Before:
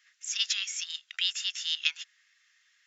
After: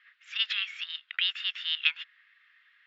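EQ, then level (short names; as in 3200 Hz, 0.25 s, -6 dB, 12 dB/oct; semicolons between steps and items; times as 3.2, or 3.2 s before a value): air absorption 450 m; band shelf 2100 Hz +9 dB 2.4 oct; +1.5 dB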